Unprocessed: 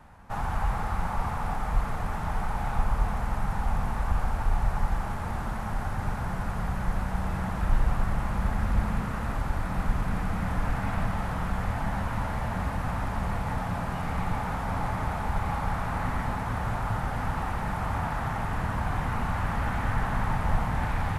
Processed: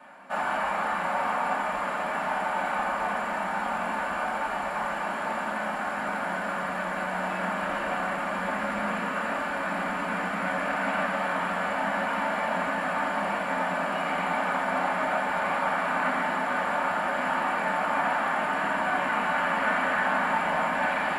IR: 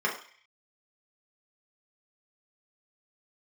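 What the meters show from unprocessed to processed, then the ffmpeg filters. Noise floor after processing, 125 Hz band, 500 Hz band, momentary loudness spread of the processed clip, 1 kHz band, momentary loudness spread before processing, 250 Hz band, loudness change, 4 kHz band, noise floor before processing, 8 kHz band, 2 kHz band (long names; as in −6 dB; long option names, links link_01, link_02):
−31 dBFS, −14.5 dB, +8.0 dB, 4 LU, +5.5 dB, 3 LU, −0.5 dB, +3.0 dB, +7.0 dB, −32 dBFS, +1.5 dB, +9.5 dB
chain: -filter_complex "[0:a]highpass=frequency=210:poles=1[link_01];[1:a]atrim=start_sample=2205,asetrate=61740,aresample=44100[link_02];[link_01][link_02]afir=irnorm=-1:irlink=0"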